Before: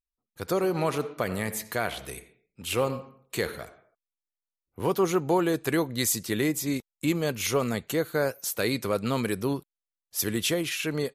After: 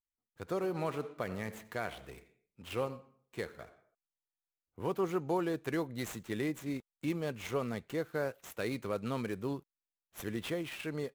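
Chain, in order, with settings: median filter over 9 samples; 2.83–3.59 upward expander 1.5:1, over -36 dBFS; gain -8.5 dB

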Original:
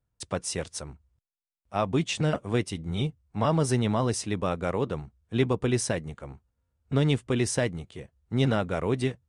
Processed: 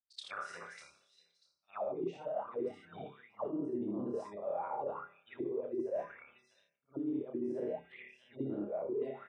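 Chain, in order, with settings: short-time reversal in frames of 0.165 s; on a send: flutter echo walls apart 5 m, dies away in 0.51 s; on the sum: spectral gate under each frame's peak -30 dB strong; outdoor echo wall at 110 m, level -19 dB; auto-wah 310–4600 Hz, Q 10, down, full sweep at -22 dBFS; reverse; compressor 6:1, threshold -44 dBFS, peak gain reduction 14.5 dB; reverse; gain +9.5 dB

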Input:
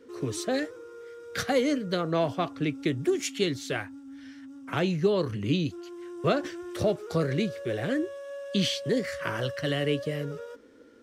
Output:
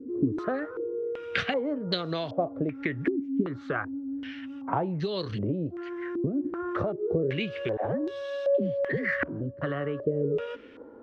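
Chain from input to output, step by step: compressor 12:1, threshold -33 dBFS, peak gain reduction 15 dB; 7.77–9.41 dispersion lows, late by 85 ms, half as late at 300 Hz; stepped low-pass 2.6 Hz 280–4000 Hz; gain +5.5 dB

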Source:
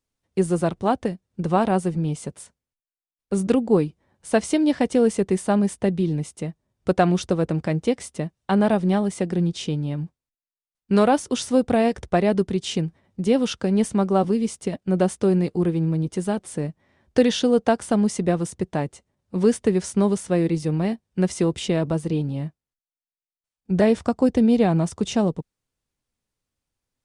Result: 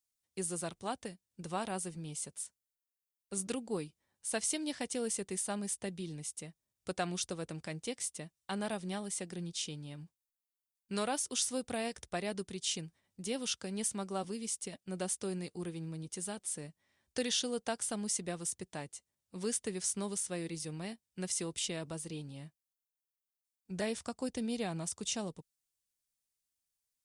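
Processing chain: pre-emphasis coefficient 0.9

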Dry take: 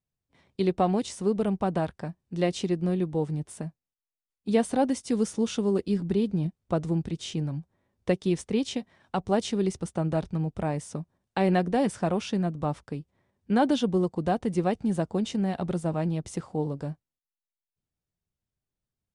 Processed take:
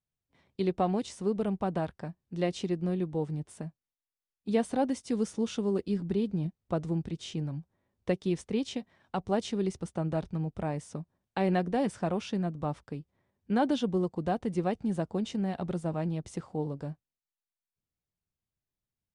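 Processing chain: high shelf 9200 Hz -7.5 dB; gain -4 dB

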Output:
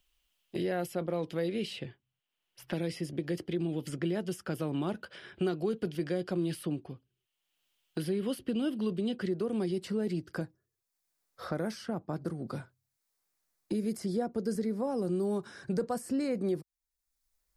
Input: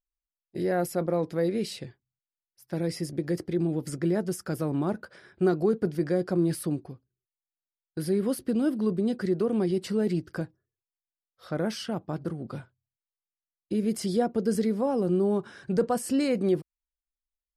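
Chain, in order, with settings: bell 3000 Hz +14.5 dB 0.54 oct, from 9.28 s +2 dB, from 10.41 s -7 dB; three-band squash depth 70%; gain -6 dB

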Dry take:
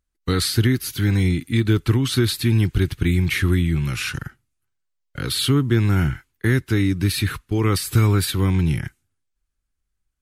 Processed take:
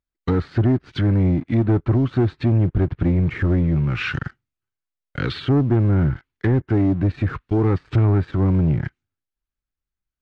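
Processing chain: treble ducked by the level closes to 1000 Hz, closed at -18 dBFS; low shelf 100 Hz -5.5 dB; sample leveller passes 2; air absorption 120 m; gain -2 dB

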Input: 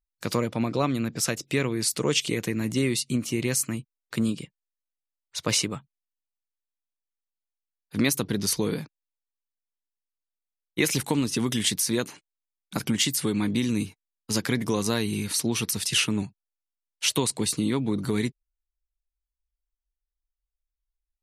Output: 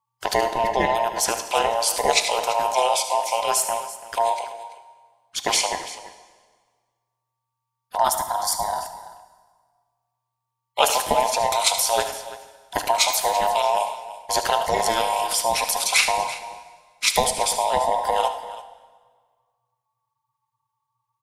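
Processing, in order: band inversion scrambler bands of 1000 Hz; in parallel at -2 dB: level quantiser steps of 11 dB; on the sum: ring modulator 120 Hz; 7.98–8.83 fixed phaser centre 1100 Hz, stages 4; on a send: tapped delay 75/106/336 ms -12.5/-17.5/-16 dB; on the sum: plate-style reverb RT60 1.6 s, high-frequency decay 0.85×, DRR 10 dB; gain +4 dB

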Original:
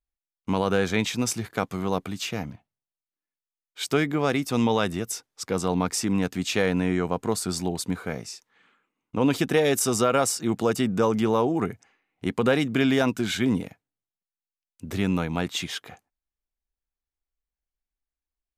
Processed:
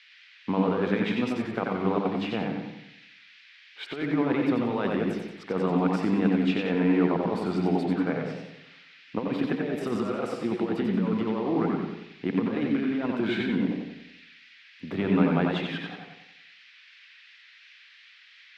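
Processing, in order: HPF 200 Hz 12 dB/oct; high shelf 12000 Hz -4 dB; negative-ratio compressor -26 dBFS, ratio -0.5; band noise 1800–6200 Hz -46 dBFS; air absorption 440 m; on a send at -4 dB: reverb RT60 0.45 s, pre-delay 80 ms; on the sum: warbling echo 92 ms, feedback 47%, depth 79 cents, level -5 dB

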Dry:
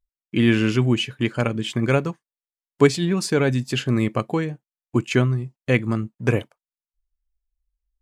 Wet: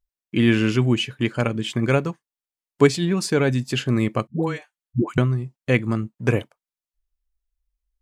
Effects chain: 4.27–5.18 dispersion highs, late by 0.135 s, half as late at 450 Hz

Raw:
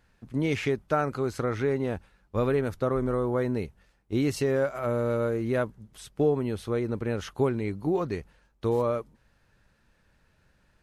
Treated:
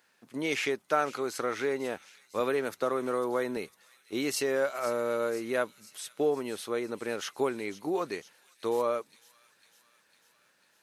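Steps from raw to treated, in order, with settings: HPF 270 Hz 12 dB/oct; tilt +2 dB/oct; thin delay 0.501 s, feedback 63%, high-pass 3700 Hz, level -12 dB; 2.4–3.57 three-band squash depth 40%

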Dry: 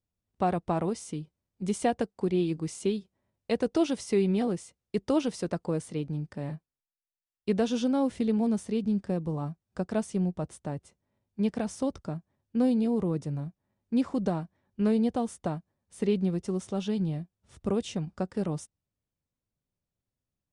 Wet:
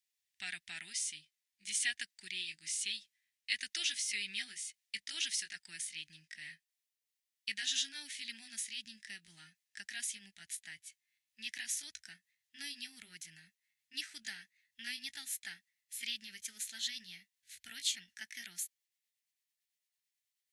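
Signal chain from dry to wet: gliding pitch shift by +3 st starting unshifted; elliptic high-pass 1800 Hz, stop band 40 dB; gain +8.5 dB

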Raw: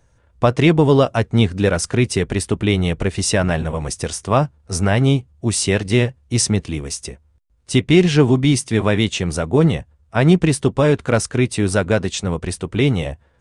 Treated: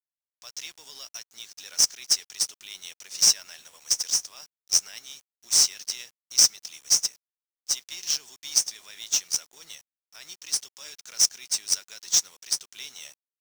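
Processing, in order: AGC gain up to 11.5 dB; limiter -8.5 dBFS, peak gain reduction 7.5 dB; band-pass 5700 Hz, Q 6; tilt +3.5 dB/oct; speakerphone echo 0.1 s, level -28 dB; companded quantiser 4-bit

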